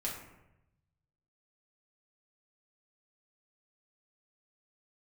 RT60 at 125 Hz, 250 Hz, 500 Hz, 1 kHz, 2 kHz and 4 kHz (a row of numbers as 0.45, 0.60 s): 1.6, 1.1, 0.95, 0.85, 0.80, 0.50 s